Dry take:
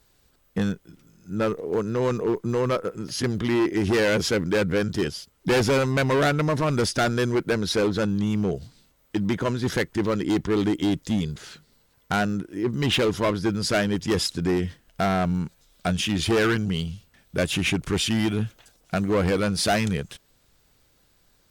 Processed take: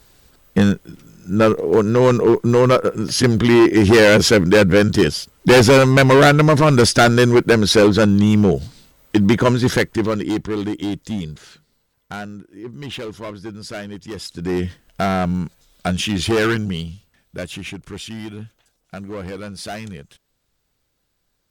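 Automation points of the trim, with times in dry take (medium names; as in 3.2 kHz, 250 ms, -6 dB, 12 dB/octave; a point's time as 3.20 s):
9.51 s +10.5 dB
10.57 s -0.5 dB
11.30 s -0.5 dB
12.34 s -8 dB
14.19 s -8 dB
14.60 s +4 dB
16.52 s +4 dB
17.75 s -8 dB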